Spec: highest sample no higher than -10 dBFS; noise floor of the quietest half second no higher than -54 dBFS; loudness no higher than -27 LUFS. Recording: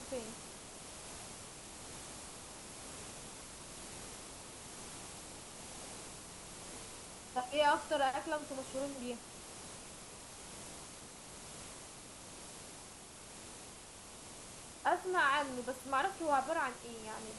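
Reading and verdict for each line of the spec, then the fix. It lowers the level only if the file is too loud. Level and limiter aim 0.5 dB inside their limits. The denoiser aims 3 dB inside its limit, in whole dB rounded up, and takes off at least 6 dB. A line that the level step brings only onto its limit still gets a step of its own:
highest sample -19.5 dBFS: pass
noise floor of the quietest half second -53 dBFS: fail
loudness -40.5 LUFS: pass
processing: noise reduction 6 dB, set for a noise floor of -53 dBFS

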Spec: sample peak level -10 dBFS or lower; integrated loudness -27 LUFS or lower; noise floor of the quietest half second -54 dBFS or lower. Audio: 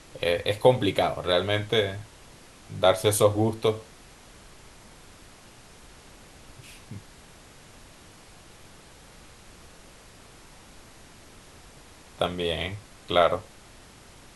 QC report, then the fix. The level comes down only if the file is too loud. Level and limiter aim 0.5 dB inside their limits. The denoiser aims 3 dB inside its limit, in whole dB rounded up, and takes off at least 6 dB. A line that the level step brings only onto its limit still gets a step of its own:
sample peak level -5.0 dBFS: fail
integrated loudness -25.0 LUFS: fail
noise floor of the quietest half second -50 dBFS: fail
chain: noise reduction 6 dB, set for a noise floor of -50 dBFS; trim -2.5 dB; peak limiter -10.5 dBFS

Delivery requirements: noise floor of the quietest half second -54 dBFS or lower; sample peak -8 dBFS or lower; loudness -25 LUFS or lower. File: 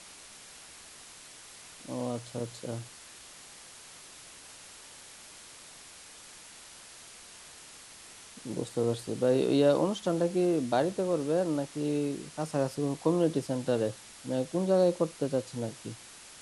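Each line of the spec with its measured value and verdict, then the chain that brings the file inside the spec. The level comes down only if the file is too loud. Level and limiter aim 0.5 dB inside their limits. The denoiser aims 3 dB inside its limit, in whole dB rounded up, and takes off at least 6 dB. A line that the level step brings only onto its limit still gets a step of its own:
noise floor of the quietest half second -50 dBFS: fail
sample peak -13.0 dBFS: pass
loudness -30.0 LUFS: pass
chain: noise reduction 7 dB, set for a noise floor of -50 dBFS

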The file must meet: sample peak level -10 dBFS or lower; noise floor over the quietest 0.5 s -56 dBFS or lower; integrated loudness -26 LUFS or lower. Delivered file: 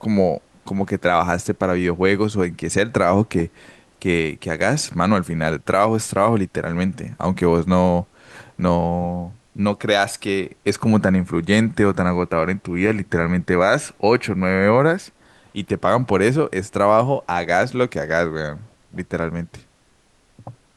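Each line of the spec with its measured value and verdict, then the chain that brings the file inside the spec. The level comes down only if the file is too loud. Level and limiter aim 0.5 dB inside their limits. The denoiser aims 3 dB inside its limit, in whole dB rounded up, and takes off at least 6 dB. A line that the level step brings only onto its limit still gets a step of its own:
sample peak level -3.5 dBFS: fail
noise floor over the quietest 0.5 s -58 dBFS: pass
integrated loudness -20.0 LUFS: fail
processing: trim -6.5 dB; peak limiter -10.5 dBFS

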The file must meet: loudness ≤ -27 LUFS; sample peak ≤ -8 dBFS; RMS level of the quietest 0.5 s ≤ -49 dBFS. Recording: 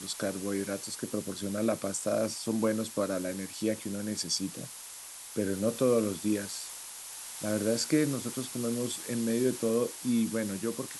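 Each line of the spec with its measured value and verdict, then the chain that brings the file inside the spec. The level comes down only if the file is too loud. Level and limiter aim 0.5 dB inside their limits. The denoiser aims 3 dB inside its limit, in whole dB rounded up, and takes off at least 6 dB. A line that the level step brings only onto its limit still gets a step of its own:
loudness -31.5 LUFS: pass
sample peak -14.5 dBFS: pass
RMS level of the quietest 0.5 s -45 dBFS: fail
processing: noise reduction 7 dB, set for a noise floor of -45 dBFS

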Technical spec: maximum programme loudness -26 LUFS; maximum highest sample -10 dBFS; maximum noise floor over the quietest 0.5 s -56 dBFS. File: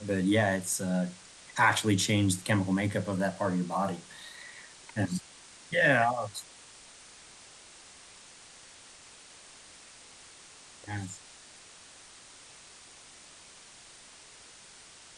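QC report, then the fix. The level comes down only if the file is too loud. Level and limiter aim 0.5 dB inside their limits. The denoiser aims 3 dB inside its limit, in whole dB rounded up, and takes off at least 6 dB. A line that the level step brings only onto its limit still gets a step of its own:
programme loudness -29.0 LUFS: pass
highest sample -11.5 dBFS: pass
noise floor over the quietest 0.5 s -53 dBFS: fail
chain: noise reduction 6 dB, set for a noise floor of -53 dBFS

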